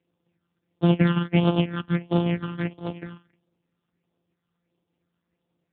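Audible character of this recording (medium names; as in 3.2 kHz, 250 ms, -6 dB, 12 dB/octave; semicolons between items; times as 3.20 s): a buzz of ramps at a fixed pitch in blocks of 256 samples; phasing stages 8, 1.5 Hz, lowest notch 620–2000 Hz; AMR-NB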